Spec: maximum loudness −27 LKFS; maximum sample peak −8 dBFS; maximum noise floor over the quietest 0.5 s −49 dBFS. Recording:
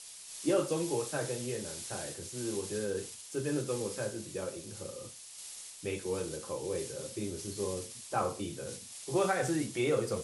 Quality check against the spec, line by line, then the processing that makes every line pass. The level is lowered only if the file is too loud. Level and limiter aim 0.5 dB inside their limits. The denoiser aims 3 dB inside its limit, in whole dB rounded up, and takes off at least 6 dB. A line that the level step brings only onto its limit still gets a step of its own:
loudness −35.5 LKFS: in spec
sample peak −17.0 dBFS: in spec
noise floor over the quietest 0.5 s −48 dBFS: out of spec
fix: broadband denoise 6 dB, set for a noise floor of −48 dBFS

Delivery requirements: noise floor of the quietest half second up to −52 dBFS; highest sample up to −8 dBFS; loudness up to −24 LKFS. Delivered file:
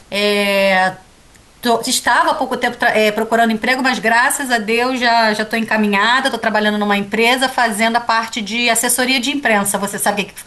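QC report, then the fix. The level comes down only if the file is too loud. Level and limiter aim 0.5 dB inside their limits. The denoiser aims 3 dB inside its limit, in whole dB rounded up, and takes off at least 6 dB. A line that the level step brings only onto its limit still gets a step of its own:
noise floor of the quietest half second −46 dBFS: out of spec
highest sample −3.5 dBFS: out of spec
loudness −14.5 LKFS: out of spec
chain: level −10 dB

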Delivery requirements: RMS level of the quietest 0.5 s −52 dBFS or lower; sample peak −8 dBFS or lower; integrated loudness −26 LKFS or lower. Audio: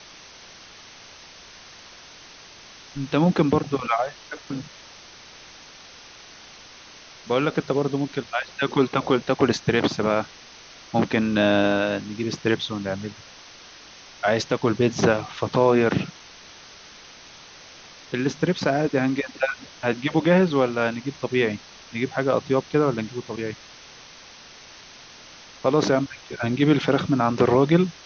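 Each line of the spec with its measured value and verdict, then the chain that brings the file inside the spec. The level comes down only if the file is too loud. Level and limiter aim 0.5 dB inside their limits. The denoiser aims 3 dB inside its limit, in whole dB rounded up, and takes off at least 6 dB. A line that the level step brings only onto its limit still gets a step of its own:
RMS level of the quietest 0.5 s −46 dBFS: out of spec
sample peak −5.5 dBFS: out of spec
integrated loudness −23.0 LKFS: out of spec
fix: broadband denoise 6 dB, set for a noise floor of −46 dBFS
level −3.5 dB

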